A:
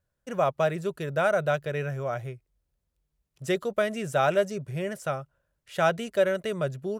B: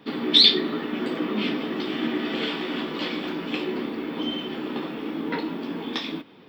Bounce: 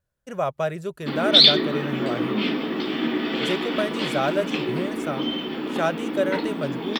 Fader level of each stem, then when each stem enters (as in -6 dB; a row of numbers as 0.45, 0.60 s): -0.5, +2.0 dB; 0.00, 1.00 s